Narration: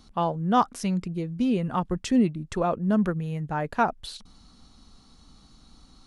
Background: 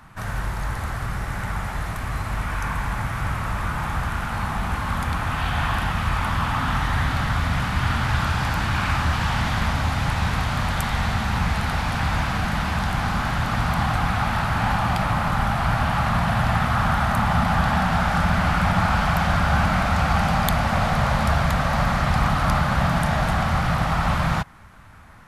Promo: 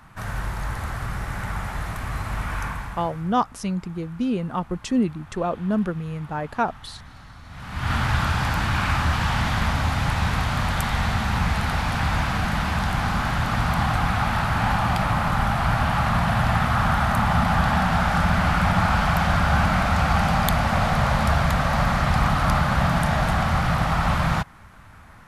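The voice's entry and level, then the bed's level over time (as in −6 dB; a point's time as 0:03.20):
2.80 s, 0.0 dB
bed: 0:02.62 −1.5 dB
0:03.46 −22 dB
0:07.44 −22 dB
0:07.93 0 dB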